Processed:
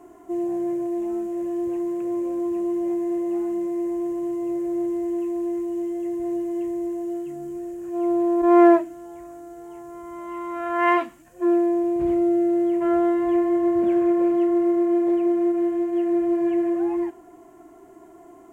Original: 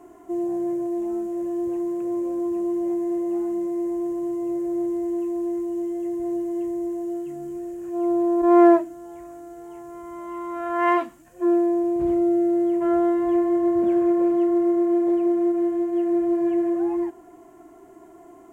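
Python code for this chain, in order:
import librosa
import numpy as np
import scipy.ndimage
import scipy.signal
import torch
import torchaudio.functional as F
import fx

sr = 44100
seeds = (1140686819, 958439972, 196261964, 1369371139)

y = fx.dynamic_eq(x, sr, hz=2400.0, q=1.3, threshold_db=-49.0, ratio=4.0, max_db=5)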